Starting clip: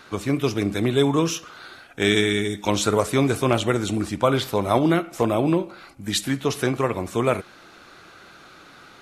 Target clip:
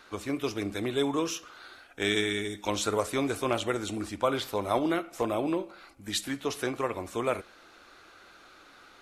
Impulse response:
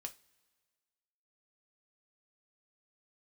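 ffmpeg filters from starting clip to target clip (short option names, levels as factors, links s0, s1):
-filter_complex "[0:a]equalizer=f=150:w=1.4:g=-13.5,asplit=2[s0][s1];[1:a]atrim=start_sample=2205,lowshelf=f=350:g=9.5[s2];[s1][s2]afir=irnorm=-1:irlink=0,volume=0.299[s3];[s0][s3]amix=inputs=2:normalize=0,volume=0.398"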